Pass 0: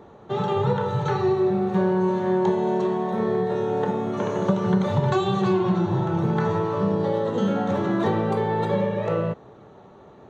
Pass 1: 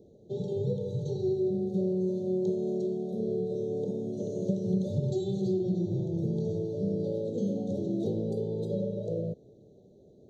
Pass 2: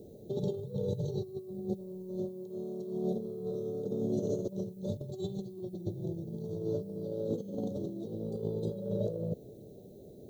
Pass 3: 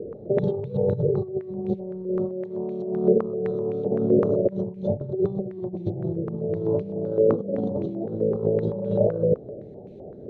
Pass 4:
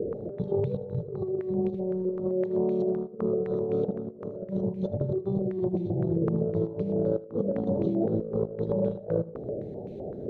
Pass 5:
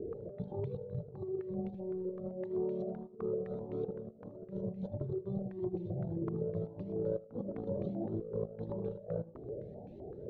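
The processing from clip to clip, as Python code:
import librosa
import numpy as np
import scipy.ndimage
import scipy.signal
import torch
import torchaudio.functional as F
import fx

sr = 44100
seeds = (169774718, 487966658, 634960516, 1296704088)

y1 = scipy.signal.sosfilt(scipy.signal.cheby2(4, 50, [1000.0, 2400.0], 'bandstop', fs=sr, output='sos'), x)
y1 = F.gain(torch.from_numpy(y1), -7.0).numpy()
y2 = fx.over_compress(y1, sr, threshold_db=-35.0, ratio=-0.5)
y2 = fx.dmg_noise_colour(y2, sr, seeds[0], colour='violet', level_db=-71.0)
y3 = fx.filter_held_lowpass(y2, sr, hz=7.8, low_hz=480.0, high_hz=2400.0)
y3 = F.gain(torch.from_numpy(y3), 8.5).numpy()
y4 = fx.over_compress(y3, sr, threshold_db=-28.0, ratio=-0.5)
y4 = y4 + 10.0 ** (-19.0 / 20.0) * np.pad(y4, (int(78 * sr / 1000.0), 0))[:len(y4)]
y5 = fx.air_absorb(y4, sr, metres=70.0)
y5 = fx.comb_cascade(y5, sr, direction='rising', hz=1.6)
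y5 = F.gain(torch.from_numpy(y5), -4.5).numpy()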